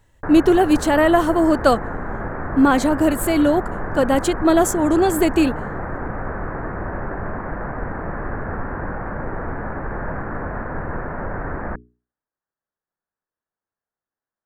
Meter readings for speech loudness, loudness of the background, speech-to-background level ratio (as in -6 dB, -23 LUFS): -17.5 LUFS, -28.5 LUFS, 11.0 dB